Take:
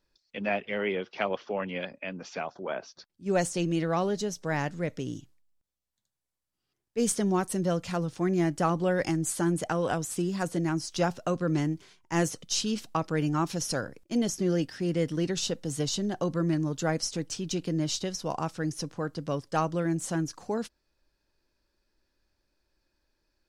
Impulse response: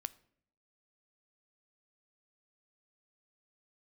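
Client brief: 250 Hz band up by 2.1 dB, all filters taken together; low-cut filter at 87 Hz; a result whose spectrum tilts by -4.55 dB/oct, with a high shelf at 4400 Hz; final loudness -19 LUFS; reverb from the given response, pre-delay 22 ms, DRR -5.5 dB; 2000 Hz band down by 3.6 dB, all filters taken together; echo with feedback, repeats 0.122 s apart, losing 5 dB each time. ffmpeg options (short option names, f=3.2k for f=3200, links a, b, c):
-filter_complex "[0:a]highpass=87,equalizer=f=250:t=o:g=3.5,equalizer=f=2k:t=o:g=-6,highshelf=f=4.4k:g=6.5,aecho=1:1:122|244|366|488|610|732|854:0.562|0.315|0.176|0.0988|0.0553|0.031|0.0173,asplit=2[a][b];[1:a]atrim=start_sample=2205,adelay=22[c];[b][c]afir=irnorm=-1:irlink=0,volume=8dB[d];[a][d]amix=inputs=2:normalize=0,volume=1.5dB"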